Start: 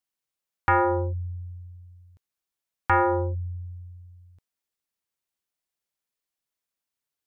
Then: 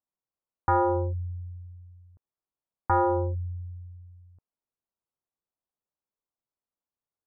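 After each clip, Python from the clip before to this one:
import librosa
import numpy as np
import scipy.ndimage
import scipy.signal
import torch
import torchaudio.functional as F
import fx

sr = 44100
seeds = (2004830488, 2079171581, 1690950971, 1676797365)

y = scipy.signal.sosfilt(scipy.signal.butter(4, 1200.0, 'lowpass', fs=sr, output='sos'), x)
y = F.gain(torch.from_numpy(y), -1.0).numpy()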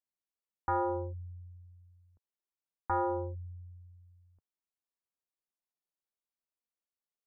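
y = fx.peak_eq(x, sr, hz=120.0, db=-14.5, octaves=0.43)
y = F.gain(torch.from_numpy(y), -7.5).numpy()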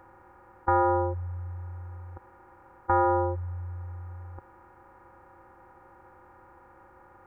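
y = fx.bin_compress(x, sr, power=0.4)
y = F.gain(torch.from_numpy(y), 6.5).numpy()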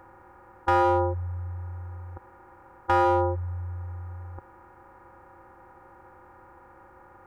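y = np.clip(10.0 ** (20.0 / 20.0) * x, -1.0, 1.0) / 10.0 ** (20.0 / 20.0)
y = F.gain(torch.from_numpy(y), 2.5).numpy()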